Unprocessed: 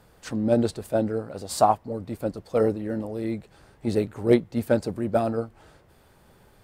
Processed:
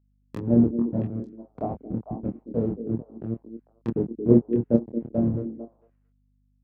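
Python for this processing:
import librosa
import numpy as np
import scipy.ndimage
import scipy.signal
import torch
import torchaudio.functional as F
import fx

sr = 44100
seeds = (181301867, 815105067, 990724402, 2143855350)

p1 = fx.delta_hold(x, sr, step_db=-19.0)
p2 = fx.low_shelf(p1, sr, hz=400.0, db=9.5)
p3 = fx.env_lowpass_down(p2, sr, base_hz=370.0, full_db=-20.5)
p4 = scipy.signal.sosfilt(scipy.signal.butter(2, 150.0, 'highpass', fs=sr, output='sos'), p3)
p5 = fx.doubler(p4, sr, ms=26.0, db=-3)
p6 = fx.add_hum(p5, sr, base_hz=50, snr_db=27)
p7 = p6 + fx.echo_stepped(p6, sr, ms=224, hz=320.0, octaves=1.4, feedback_pct=70, wet_db=-3, dry=0)
y = fx.upward_expand(p7, sr, threshold_db=-43.0, expansion=1.5)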